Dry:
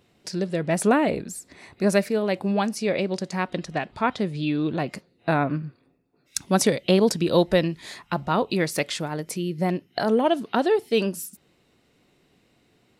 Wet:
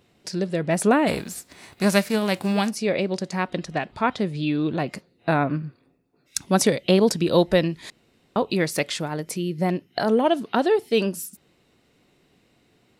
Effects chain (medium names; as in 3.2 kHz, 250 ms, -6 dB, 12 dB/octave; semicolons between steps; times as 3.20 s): 1.06–2.69 s: formants flattened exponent 0.6; 7.90–8.36 s: room tone; trim +1 dB